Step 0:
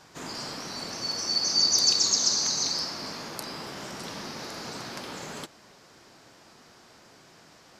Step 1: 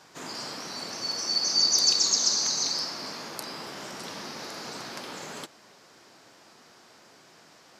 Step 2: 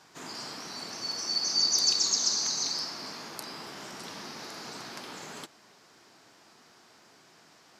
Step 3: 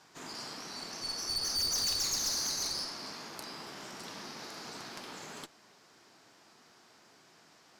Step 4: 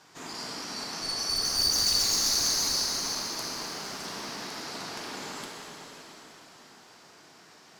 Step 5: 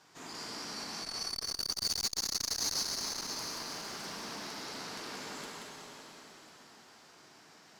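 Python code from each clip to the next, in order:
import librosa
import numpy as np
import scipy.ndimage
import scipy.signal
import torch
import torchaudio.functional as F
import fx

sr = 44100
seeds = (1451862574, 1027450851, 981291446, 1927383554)

y1 = fx.highpass(x, sr, hz=210.0, slope=6)
y2 = fx.peak_eq(y1, sr, hz=540.0, db=-4.5, octaves=0.31)
y2 = F.gain(torch.from_numpy(y2), -3.0).numpy()
y3 = fx.tube_stage(y2, sr, drive_db=28.0, bias=0.6)
y4 = fx.rev_plate(y3, sr, seeds[0], rt60_s=4.3, hf_ratio=1.0, predelay_ms=0, drr_db=-1.5)
y4 = F.gain(torch.from_numpy(y4), 3.0).numpy()
y5 = y4 + 10.0 ** (-4.0 / 20.0) * np.pad(y4, (int(180 * sr / 1000.0), 0))[:len(y4)]
y5 = fx.transformer_sat(y5, sr, knee_hz=1800.0)
y5 = F.gain(torch.from_numpy(y5), -5.5).numpy()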